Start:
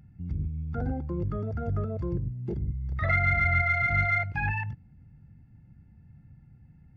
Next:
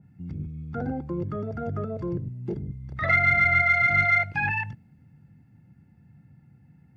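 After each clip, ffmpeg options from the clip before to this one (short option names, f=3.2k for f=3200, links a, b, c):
-af "highpass=140,bandreject=f=215.6:t=h:w=4,bandreject=f=431.2:t=h:w=4,bandreject=f=646.8:t=h:w=4,adynamicequalizer=threshold=0.0126:dfrequency=2000:dqfactor=0.7:tfrequency=2000:tqfactor=0.7:attack=5:release=100:ratio=0.375:range=2:mode=boostabove:tftype=highshelf,volume=3.5dB"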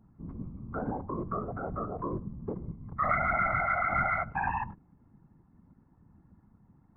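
-af "afftfilt=real='hypot(re,im)*cos(2*PI*random(0))':imag='hypot(re,im)*sin(2*PI*random(1))':win_size=512:overlap=0.75,lowpass=f=1.1k:t=q:w=6.7"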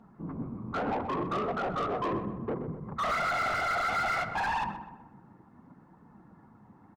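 -filter_complex "[0:a]flanger=delay=4.2:depth=6.3:regen=-34:speed=0.66:shape=triangular,asplit=2[a][b];[b]highpass=f=720:p=1,volume=29dB,asoftclip=type=tanh:threshold=-19dB[c];[a][c]amix=inputs=2:normalize=0,lowpass=f=2k:p=1,volume=-6dB,asplit=2[d][e];[e]adelay=126,lowpass=f=1.9k:p=1,volume=-9dB,asplit=2[f][g];[g]adelay=126,lowpass=f=1.9k:p=1,volume=0.52,asplit=2[h][i];[i]adelay=126,lowpass=f=1.9k:p=1,volume=0.52,asplit=2[j][k];[k]adelay=126,lowpass=f=1.9k:p=1,volume=0.52,asplit=2[l][m];[m]adelay=126,lowpass=f=1.9k:p=1,volume=0.52,asplit=2[n][o];[o]adelay=126,lowpass=f=1.9k:p=1,volume=0.52[p];[f][h][j][l][n][p]amix=inputs=6:normalize=0[q];[d][q]amix=inputs=2:normalize=0,volume=-3.5dB"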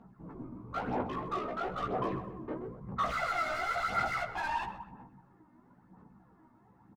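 -filter_complex "[0:a]aphaser=in_gain=1:out_gain=1:delay=3.3:decay=0.55:speed=1:type=sinusoidal,asplit=2[a][b];[b]adelay=16,volume=-3.5dB[c];[a][c]amix=inputs=2:normalize=0,volume=-7.5dB"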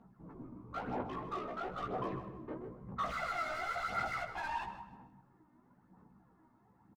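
-af "aecho=1:1:156|312|468:0.178|0.0498|0.0139,volume=-5dB"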